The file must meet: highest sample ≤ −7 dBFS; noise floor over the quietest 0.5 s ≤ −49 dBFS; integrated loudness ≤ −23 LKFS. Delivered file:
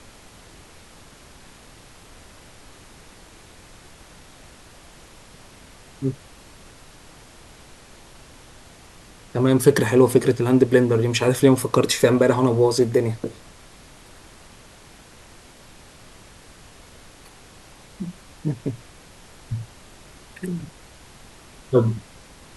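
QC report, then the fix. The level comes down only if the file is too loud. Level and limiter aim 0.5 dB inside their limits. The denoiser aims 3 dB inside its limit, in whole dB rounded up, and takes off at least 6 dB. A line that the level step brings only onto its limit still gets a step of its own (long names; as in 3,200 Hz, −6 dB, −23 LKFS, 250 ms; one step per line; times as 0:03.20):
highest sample −2.5 dBFS: out of spec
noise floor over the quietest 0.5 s −47 dBFS: out of spec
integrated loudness −20.0 LKFS: out of spec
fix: level −3.5 dB
brickwall limiter −7.5 dBFS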